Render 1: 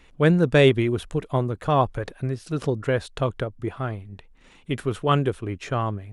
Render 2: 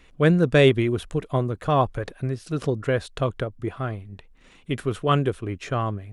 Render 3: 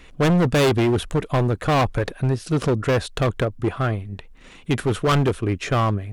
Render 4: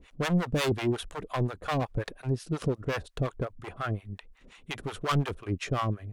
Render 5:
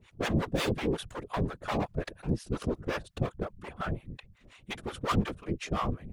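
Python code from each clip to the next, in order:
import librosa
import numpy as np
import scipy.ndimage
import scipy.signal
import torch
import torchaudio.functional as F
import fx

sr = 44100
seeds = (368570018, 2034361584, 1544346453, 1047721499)

y1 = fx.notch(x, sr, hz=880.0, q=12.0)
y2 = np.clip(y1, -10.0 ** (-22.5 / 20.0), 10.0 ** (-22.5 / 20.0))
y2 = F.gain(torch.from_numpy(y2), 7.5).numpy()
y3 = fx.harmonic_tremolo(y2, sr, hz=5.6, depth_pct=100, crossover_hz=620.0)
y3 = F.gain(torch.from_numpy(y3), -5.0).numpy()
y4 = fx.whisperise(y3, sr, seeds[0])
y4 = F.gain(torch.from_numpy(y4), -2.0).numpy()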